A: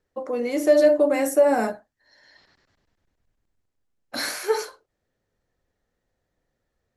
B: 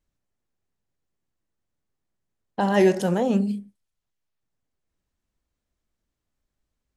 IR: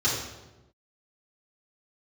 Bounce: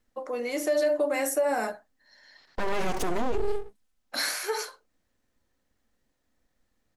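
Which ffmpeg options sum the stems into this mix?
-filter_complex "[0:a]lowshelf=frequency=470:gain=-12,volume=0.5dB[link_01];[1:a]equalizer=frequency=250:width=3:gain=7,aecho=1:1:3.9:0.76,aeval=exprs='abs(val(0))':channel_layout=same,volume=2dB[link_02];[link_01][link_02]amix=inputs=2:normalize=0,alimiter=limit=-17.5dB:level=0:latency=1:release=99"

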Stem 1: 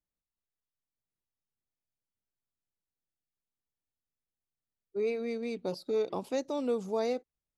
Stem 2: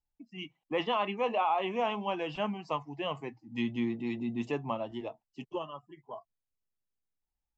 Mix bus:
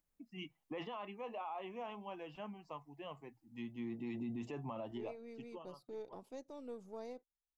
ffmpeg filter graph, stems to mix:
ffmpeg -i stem1.wav -i stem2.wav -filter_complex "[0:a]aeval=exprs='if(lt(val(0),0),0.708*val(0),val(0))':channel_layout=same,agate=range=-9dB:threshold=-47dB:ratio=16:detection=peak,acompressor=mode=upward:threshold=-47dB:ratio=2.5,volume=-15.5dB[link_01];[1:a]volume=5.5dB,afade=type=out:start_time=0.79:duration=0.28:silence=0.354813,afade=type=in:start_time=3.77:duration=0.38:silence=0.334965,afade=type=out:start_time=5.08:duration=0.48:silence=0.266073[link_02];[link_01][link_02]amix=inputs=2:normalize=0,equalizer=frequency=3800:width=0.88:gain=-4,alimiter=level_in=11dB:limit=-24dB:level=0:latency=1:release=22,volume=-11dB" out.wav

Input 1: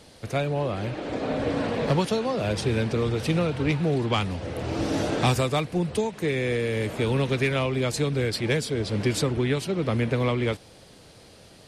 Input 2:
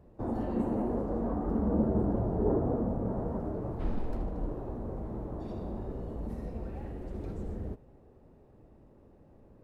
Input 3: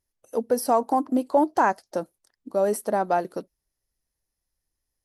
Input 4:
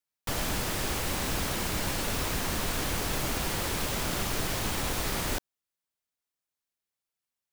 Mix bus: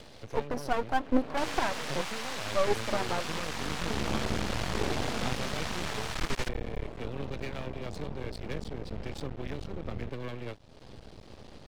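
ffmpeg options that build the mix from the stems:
ffmpeg -i stem1.wav -i stem2.wav -i stem3.wav -i stem4.wav -filter_complex "[0:a]volume=-11dB[link_01];[1:a]equalizer=frequency=320:width=1.5:gain=-6,adelay=2350,volume=1.5dB[link_02];[2:a]asoftclip=type=tanh:threshold=-15.5dB,aphaser=in_gain=1:out_gain=1:delay=3.6:decay=0.62:speed=0.86:type=triangular,volume=-4dB,asplit=2[link_03][link_04];[3:a]highpass=frequency=700:width=0.5412,highpass=frequency=700:width=1.3066,adelay=1100,volume=2dB[link_05];[link_04]apad=whole_len=528344[link_06];[link_02][link_06]sidechaincompress=threshold=-33dB:ratio=8:attack=16:release=1070[link_07];[link_01][link_07][link_03][link_05]amix=inputs=4:normalize=0,lowpass=5100,acompressor=mode=upward:threshold=-34dB:ratio=2.5,aeval=exprs='max(val(0),0)':channel_layout=same" out.wav

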